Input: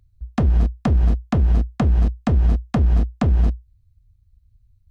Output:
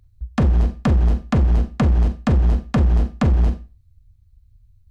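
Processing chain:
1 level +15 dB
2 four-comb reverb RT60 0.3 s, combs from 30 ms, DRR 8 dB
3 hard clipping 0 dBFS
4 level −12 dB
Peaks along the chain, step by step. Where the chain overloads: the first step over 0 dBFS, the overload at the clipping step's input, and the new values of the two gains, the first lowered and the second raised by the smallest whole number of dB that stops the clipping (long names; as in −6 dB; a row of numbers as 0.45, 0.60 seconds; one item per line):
+6.5, +7.0, 0.0, −12.0 dBFS
step 1, 7.0 dB
step 1 +8 dB, step 4 −5 dB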